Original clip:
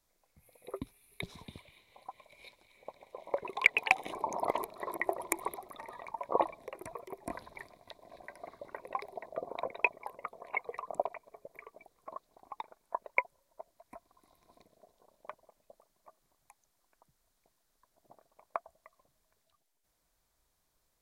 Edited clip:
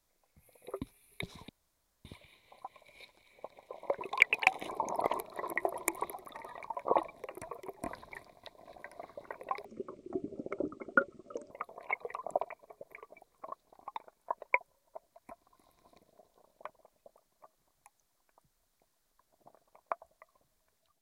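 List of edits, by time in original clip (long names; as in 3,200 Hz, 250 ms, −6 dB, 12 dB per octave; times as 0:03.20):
0:01.49: splice in room tone 0.56 s
0:09.09–0:10.15: play speed 57%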